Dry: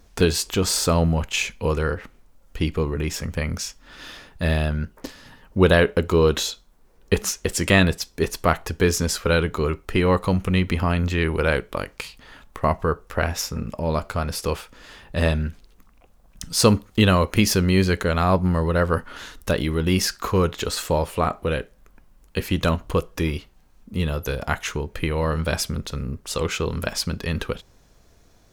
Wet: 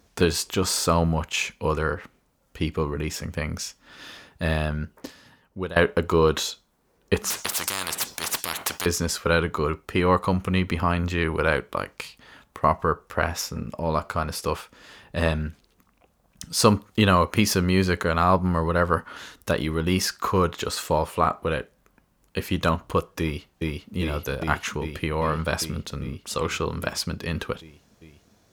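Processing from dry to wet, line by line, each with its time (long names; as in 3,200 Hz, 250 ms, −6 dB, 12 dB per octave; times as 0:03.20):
0:04.98–0:05.76: fade out, to −19.5 dB
0:07.30–0:08.86: every bin compressed towards the loudest bin 10 to 1
0:23.21–0:23.94: delay throw 400 ms, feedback 80%, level −1 dB
whole clip: high-pass filter 76 Hz; dynamic equaliser 1,100 Hz, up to +6 dB, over −38 dBFS, Q 1.6; level −2.5 dB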